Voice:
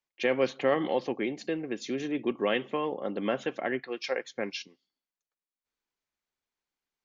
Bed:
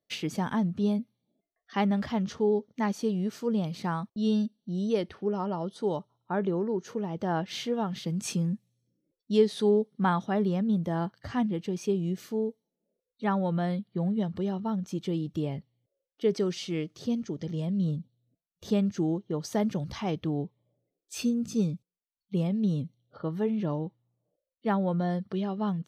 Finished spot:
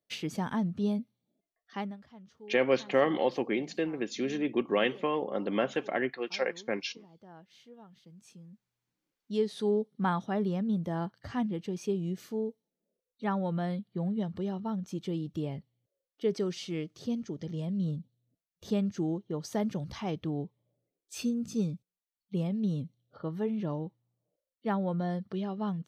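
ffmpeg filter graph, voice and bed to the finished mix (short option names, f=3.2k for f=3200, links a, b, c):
-filter_complex "[0:a]adelay=2300,volume=0.5dB[a];[1:a]volume=16.5dB,afade=t=out:st=1.58:d=0.4:silence=0.1,afade=t=in:st=8.5:d=1.42:silence=0.105925[b];[a][b]amix=inputs=2:normalize=0"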